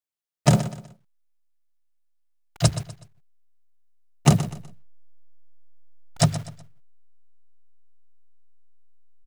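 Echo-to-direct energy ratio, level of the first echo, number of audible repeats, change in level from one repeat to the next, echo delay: -12.5 dB, -13.0 dB, 3, -9.5 dB, 0.124 s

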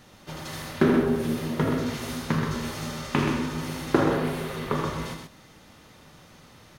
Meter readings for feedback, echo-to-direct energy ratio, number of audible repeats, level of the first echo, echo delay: no steady repeat, -4.0 dB, 2, -8.5 dB, 80 ms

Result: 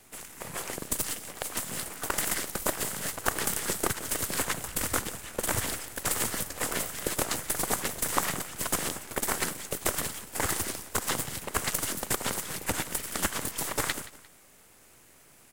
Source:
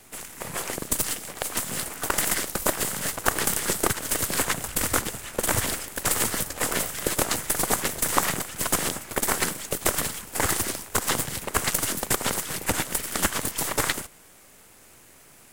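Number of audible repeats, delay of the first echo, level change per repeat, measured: 2, 0.175 s, -8.0 dB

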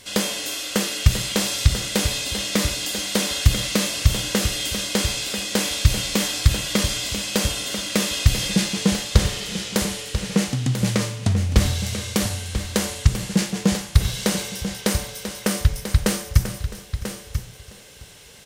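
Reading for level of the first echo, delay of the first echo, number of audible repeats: -18.5 dB, 0.661 s, 4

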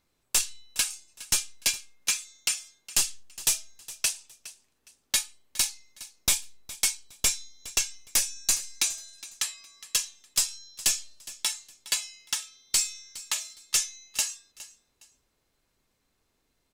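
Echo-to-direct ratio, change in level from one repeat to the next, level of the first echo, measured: -17.0 dB, -11.5 dB, -17.5 dB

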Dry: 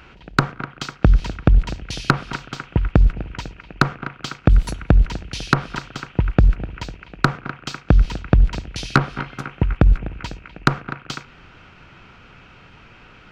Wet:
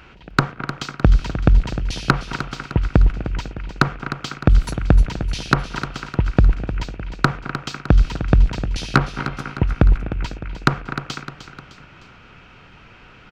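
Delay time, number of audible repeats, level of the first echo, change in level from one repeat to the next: 0.305 s, 3, -11.0 dB, -6.0 dB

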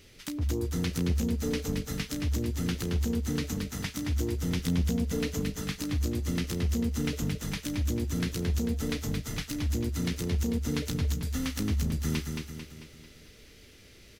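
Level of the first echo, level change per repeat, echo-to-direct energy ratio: -5.0 dB, -6.5 dB, -4.0 dB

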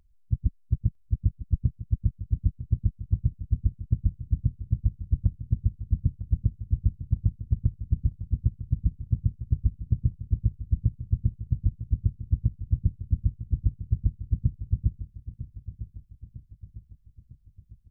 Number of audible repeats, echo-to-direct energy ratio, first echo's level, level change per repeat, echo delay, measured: 4, -12.0 dB, -13.0 dB, -6.0 dB, 0.952 s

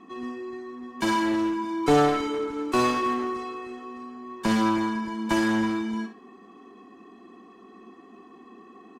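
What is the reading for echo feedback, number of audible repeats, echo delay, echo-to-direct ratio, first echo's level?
15%, 2, 63 ms, -10.0 dB, -10.0 dB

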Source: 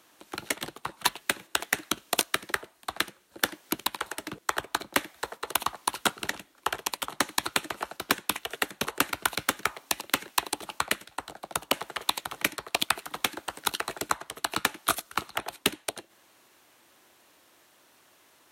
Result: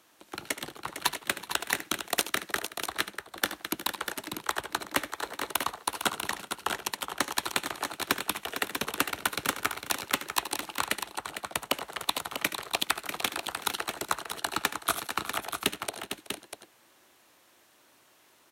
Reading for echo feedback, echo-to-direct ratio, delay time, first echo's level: no steady repeat, -4.5 dB, 74 ms, -13.5 dB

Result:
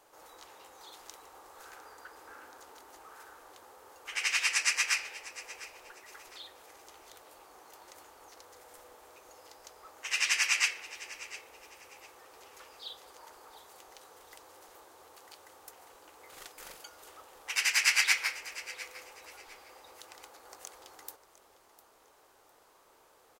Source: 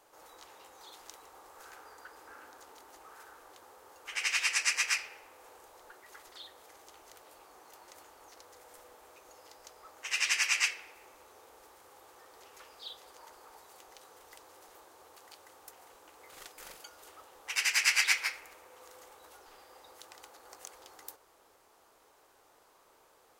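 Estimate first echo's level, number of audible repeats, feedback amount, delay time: -17.0 dB, 2, 28%, 0.704 s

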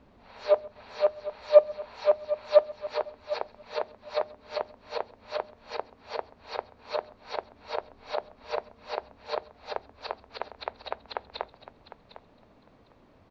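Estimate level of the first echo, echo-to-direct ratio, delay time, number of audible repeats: -23.0 dB, -13.5 dB, 0.132 s, 4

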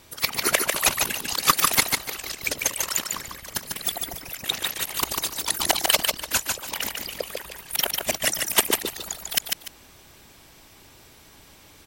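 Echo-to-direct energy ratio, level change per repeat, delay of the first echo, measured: -3.5 dB, -12.0 dB, 0.147 s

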